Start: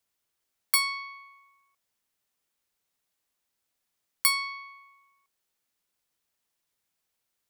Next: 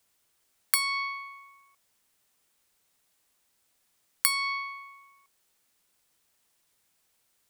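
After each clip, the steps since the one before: bell 8700 Hz +3 dB 0.48 oct; compressor 8:1, threshold -30 dBFS, peak gain reduction 13 dB; gain +8.5 dB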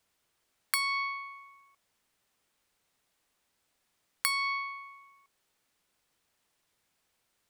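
high shelf 5900 Hz -9.5 dB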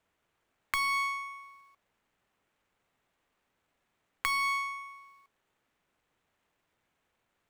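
median filter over 9 samples; gain +3 dB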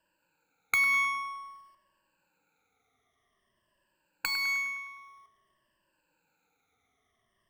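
moving spectral ripple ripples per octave 1.3, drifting -0.51 Hz, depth 22 dB; darkening echo 0.103 s, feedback 59%, low-pass 4000 Hz, level -12 dB; gain -2.5 dB

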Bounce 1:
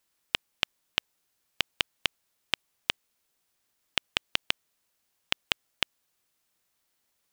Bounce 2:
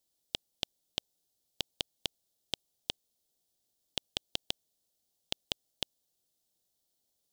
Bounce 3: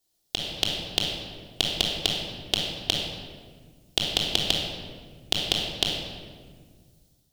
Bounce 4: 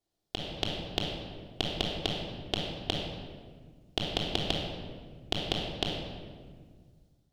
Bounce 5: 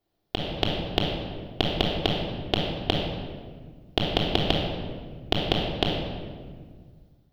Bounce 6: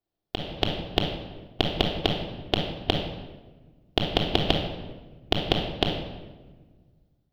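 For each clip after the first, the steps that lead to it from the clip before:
band shelf 1600 Hz -15 dB; gain -3 dB
shoebox room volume 2000 m³, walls mixed, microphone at 3.3 m; AGC gain up to 7.5 dB; gain +2.5 dB
LPF 1300 Hz 6 dB/oct
bell 7700 Hz -14 dB 1.3 oct; gain +8.5 dB
upward expander 1.5:1, over -43 dBFS; gain +1.5 dB

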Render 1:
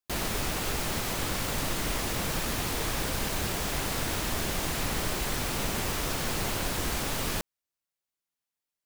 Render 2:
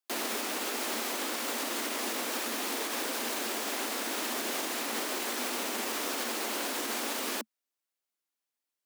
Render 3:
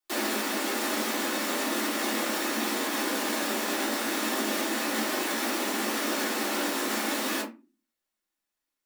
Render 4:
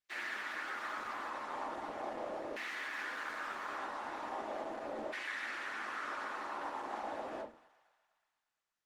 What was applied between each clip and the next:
steep high-pass 220 Hz 96 dB/oct; limiter -23.5 dBFS, peak gain reduction 5 dB
reverb, pre-delay 3 ms, DRR -8 dB; gain -4 dB
LFO band-pass saw down 0.39 Hz 560–2100 Hz; thinning echo 0.116 s, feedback 74%, high-pass 480 Hz, level -18.5 dB; gain -2.5 dB; Opus 16 kbps 48000 Hz

